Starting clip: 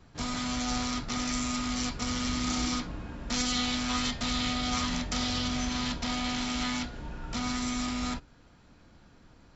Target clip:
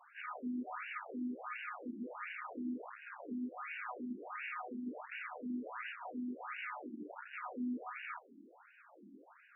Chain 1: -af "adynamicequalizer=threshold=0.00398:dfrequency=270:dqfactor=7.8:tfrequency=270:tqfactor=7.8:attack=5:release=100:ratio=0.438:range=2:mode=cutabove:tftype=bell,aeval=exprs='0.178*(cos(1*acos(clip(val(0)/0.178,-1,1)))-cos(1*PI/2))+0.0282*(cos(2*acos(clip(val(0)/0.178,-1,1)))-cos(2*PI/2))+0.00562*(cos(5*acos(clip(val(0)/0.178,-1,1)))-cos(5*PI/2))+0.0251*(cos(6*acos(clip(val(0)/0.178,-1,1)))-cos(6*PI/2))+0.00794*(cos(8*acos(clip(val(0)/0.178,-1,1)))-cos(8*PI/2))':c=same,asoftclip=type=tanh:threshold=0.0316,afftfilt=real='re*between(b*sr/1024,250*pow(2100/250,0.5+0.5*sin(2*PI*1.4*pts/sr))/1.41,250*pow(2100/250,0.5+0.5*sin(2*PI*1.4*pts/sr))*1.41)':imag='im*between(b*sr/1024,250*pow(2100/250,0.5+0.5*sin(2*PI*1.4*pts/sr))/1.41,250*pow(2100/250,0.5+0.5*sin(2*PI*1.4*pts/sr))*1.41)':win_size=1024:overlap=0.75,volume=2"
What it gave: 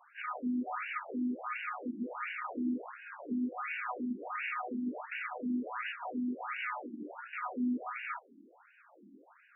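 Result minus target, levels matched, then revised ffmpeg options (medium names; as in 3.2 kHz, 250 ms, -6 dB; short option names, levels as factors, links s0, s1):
saturation: distortion -4 dB
-af "adynamicequalizer=threshold=0.00398:dfrequency=270:dqfactor=7.8:tfrequency=270:tqfactor=7.8:attack=5:release=100:ratio=0.438:range=2:mode=cutabove:tftype=bell,aeval=exprs='0.178*(cos(1*acos(clip(val(0)/0.178,-1,1)))-cos(1*PI/2))+0.0282*(cos(2*acos(clip(val(0)/0.178,-1,1)))-cos(2*PI/2))+0.00562*(cos(5*acos(clip(val(0)/0.178,-1,1)))-cos(5*PI/2))+0.0251*(cos(6*acos(clip(val(0)/0.178,-1,1)))-cos(6*PI/2))+0.00794*(cos(8*acos(clip(val(0)/0.178,-1,1)))-cos(8*PI/2))':c=same,asoftclip=type=tanh:threshold=0.0112,afftfilt=real='re*between(b*sr/1024,250*pow(2100/250,0.5+0.5*sin(2*PI*1.4*pts/sr))/1.41,250*pow(2100/250,0.5+0.5*sin(2*PI*1.4*pts/sr))*1.41)':imag='im*between(b*sr/1024,250*pow(2100/250,0.5+0.5*sin(2*PI*1.4*pts/sr))/1.41,250*pow(2100/250,0.5+0.5*sin(2*PI*1.4*pts/sr))*1.41)':win_size=1024:overlap=0.75,volume=2"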